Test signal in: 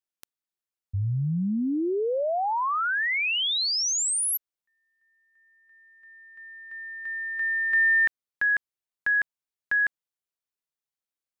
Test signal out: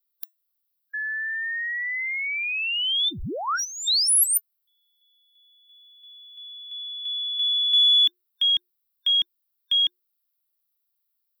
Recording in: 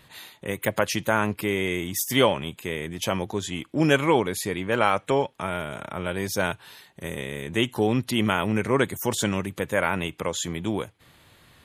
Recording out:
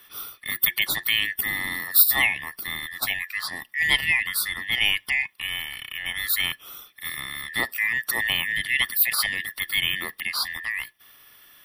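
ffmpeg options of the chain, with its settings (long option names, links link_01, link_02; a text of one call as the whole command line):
ffmpeg -i in.wav -af "afftfilt=real='real(if(lt(b,920),b+92*(1-2*mod(floor(b/92),2)),b),0)':imag='imag(if(lt(b,920),b+92*(1-2*mod(floor(b/92),2)),b),0)':win_size=2048:overlap=0.75,equalizer=frequency=600:width=0.51:gain=7.5,afreqshift=-360,crystalizer=i=7.5:c=0,superequalizer=10b=2:15b=0.355:16b=0.501,aexciter=amount=1.4:drive=2.5:freq=3500,volume=-12dB" out.wav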